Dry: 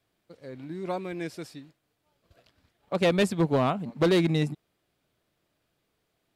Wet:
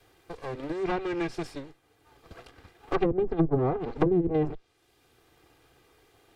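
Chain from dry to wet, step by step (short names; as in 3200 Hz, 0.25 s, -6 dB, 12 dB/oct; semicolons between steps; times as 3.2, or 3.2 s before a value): minimum comb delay 2.5 ms; treble ducked by the level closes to 310 Hz, closed at -21 dBFS; three-band squash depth 40%; gain +5 dB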